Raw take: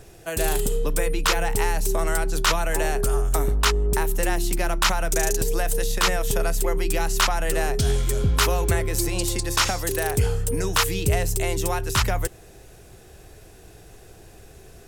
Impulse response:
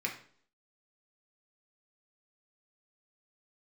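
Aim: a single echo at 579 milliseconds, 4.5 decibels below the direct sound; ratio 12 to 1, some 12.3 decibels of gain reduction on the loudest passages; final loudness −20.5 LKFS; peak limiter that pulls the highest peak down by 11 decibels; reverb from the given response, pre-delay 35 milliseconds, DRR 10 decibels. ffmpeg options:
-filter_complex "[0:a]acompressor=threshold=-28dB:ratio=12,alimiter=level_in=2.5dB:limit=-24dB:level=0:latency=1,volume=-2.5dB,aecho=1:1:579:0.596,asplit=2[link_01][link_02];[1:a]atrim=start_sample=2205,adelay=35[link_03];[link_02][link_03]afir=irnorm=-1:irlink=0,volume=-14.5dB[link_04];[link_01][link_04]amix=inputs=2:normalize=0,volume=15dB"

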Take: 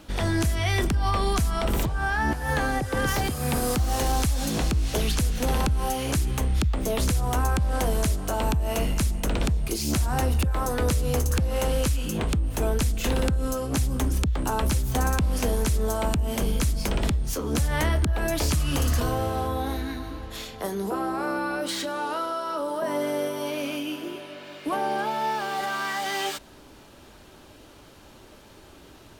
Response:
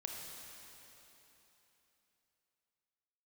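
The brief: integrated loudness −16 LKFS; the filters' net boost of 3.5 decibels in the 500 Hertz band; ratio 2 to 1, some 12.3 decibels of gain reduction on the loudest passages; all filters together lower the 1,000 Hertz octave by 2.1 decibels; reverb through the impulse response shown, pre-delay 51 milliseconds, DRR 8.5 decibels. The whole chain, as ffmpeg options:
-filter_complex "[0:a]equalizer=frequency=500:width_type=o:gain=5.5,equalizer=frequency=1000:width_type=o:gain=-5,acompressor=threshold=-43dB:ratio=2,asplit=2[link_01][link_02];[1:a]atrim=start_sample=2205,adelay=51[link_03];[link_02][link_03]afir=irnorm=-1:irlink=0,volume=-7.5dB[link_04];[link_01][link_04]amix=inputs=2:normalize=0,volume=20.5dB"

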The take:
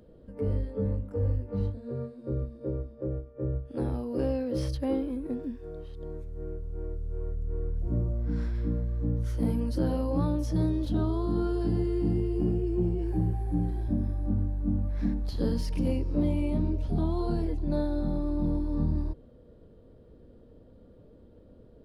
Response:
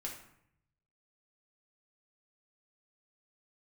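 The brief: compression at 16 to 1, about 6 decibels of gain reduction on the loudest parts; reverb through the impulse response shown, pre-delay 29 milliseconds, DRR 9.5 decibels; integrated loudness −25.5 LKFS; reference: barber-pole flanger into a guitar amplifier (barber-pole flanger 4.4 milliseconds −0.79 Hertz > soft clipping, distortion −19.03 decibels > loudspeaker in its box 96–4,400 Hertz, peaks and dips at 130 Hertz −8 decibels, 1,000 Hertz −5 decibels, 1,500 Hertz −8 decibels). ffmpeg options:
-filter_complex "[0:a]acompressor=threshold=-28dB:ratio=16,asplit=2[link_01][link_02];[1:a]atrim=start_sample=2205,adelay=29[link_03];[link_02][link_03]afir=irnorm=-1:irlink=0,volume=-8.5dB[link_04];[link_01][link_04]amix=inputs=2:normalize=0,asplit=2[link_05][link_06];[link_06]adelay=4.4,afreqshift=-0.79[link_07];[link_05][link_07]amix=inputs=2:normalize=1,asoftclip=threshold=-27.5dB,highpass=96,equalizer=frequency=130:width_type=q:width=4:gain=-8,equalizer=frequency=1000:width_type=q:width=4:gain=-5,equalizer=frequency=1500:width_type=q:width=4:gain=-8,lowpass=frequency=4400:width=0.5412,lowpass=frequency=4400:width=1.3066,volume=15.5dB"

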